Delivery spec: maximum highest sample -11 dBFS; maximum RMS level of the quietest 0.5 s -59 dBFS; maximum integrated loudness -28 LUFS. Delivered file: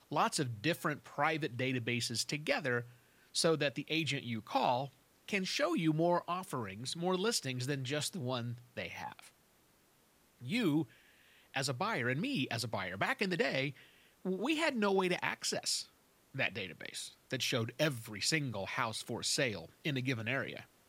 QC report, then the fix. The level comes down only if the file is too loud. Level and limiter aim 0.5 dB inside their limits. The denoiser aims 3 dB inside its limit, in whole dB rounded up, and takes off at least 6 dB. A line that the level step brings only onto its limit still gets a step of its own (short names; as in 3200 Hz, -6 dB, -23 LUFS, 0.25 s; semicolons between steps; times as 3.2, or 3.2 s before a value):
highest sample -17.5 dBFS: OK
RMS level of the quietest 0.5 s -69 dBFS: OK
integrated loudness -35.5 LUFS: OK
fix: none